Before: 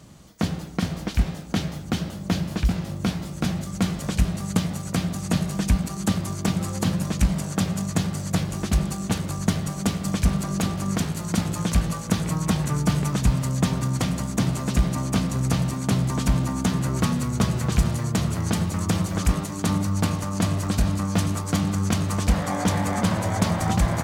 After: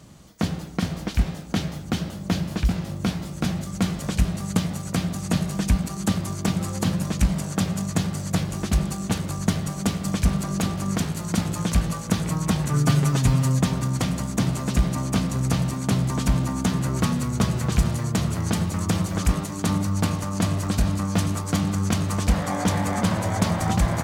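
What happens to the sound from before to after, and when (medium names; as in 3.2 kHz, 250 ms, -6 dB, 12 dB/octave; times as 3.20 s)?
12.73–13.59 s: comb 7.4 ms, depth 82%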